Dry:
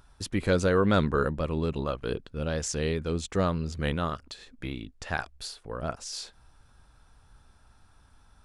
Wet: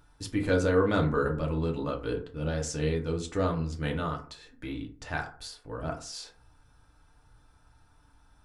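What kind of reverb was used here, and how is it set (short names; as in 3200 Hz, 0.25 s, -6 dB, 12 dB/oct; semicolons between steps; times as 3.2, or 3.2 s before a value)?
FDN reverb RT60 0.44 s, low-frequency decay 1×, high-frequency decay 0.45×, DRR 0 dB; gain -5 dB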